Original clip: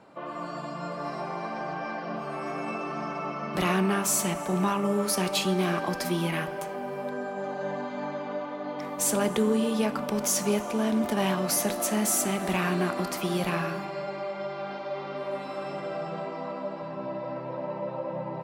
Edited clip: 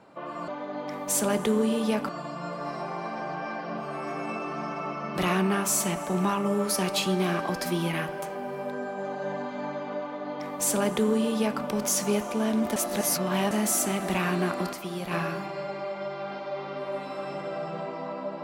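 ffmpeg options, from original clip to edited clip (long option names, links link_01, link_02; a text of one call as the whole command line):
ffmpeg -i in.wav -filter_complex "[0:a]asplit=7[link_01][link_02][link_03][link_04][link_05][link_06][link_07];[link_01]atrim=end=0.482[link_08];[link_02]atrim=start=8.388:end=10.002[link_09];[link_03]atrim=start=0.478:end=11.152[link_10];[link_04]atrim=start=11.148:end=11.902,asetpts=PTS-STARTPTS,areverse[link_11];[link_05]atrim=start=11.898:end=13.122[link_12];[link_06]atrim=start=13.118:end=13.502,asetpts=PTS-STARTPTS,volume=-6dB[link_13];[link_07]atrim=start=13.498[link_14];[link_08][link_09]acrossfade=duration=0.004:curve1=hsin:curve2=hsin[link_15];[link_15][link_10]acrossfade=duration=0.004:curve1=hsin:curve2=hsin[link_16];[link_16][link_11]acrossfade=duration=0.004:curve1=hsin:curve2=hsin[link_17];[link_17][link_12]acrossfade=duration=0.004:curve1=hsin:curve2=hsin[link_18];[link_18][link_13]acrossfade=duration=0.004:curve1=hsin:curve2=hsin[link_19];[link_19][link_14]acrossfade=duration=0.004:curve1=hsin:curve2=hsin" out.wav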